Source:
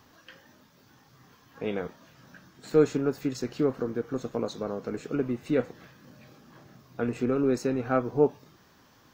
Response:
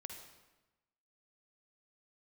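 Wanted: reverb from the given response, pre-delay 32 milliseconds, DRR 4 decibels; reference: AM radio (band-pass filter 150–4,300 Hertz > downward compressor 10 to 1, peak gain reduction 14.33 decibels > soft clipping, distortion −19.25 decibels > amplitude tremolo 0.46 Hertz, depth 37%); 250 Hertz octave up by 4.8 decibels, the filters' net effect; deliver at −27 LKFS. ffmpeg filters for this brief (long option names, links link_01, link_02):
-filter_complex "[0:a]equalizer=frequency=250:width_type=o:gain=6,asplit=2[link_01][link_02];[1:a]atrim=start_sample=2205,adelay=32[link_03];[link_02][link_03]afir=irnorm=-1:irlink=0,volume=0dB[link_04];[link_01][link_04]amix=inputs=2:normalize=0,highpass=150,lowpass=4300,acompressor=threshold=-25dB:ratio=10,asoftclip=threshold=-21dB,tremolo=f=0.46:d=0.37,volume=8dB"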